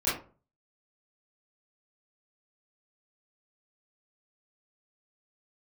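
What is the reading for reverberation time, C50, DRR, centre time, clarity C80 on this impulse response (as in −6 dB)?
0.40 s, 4.5 dB, −12.5 dB, 44 ms, 11.5 dB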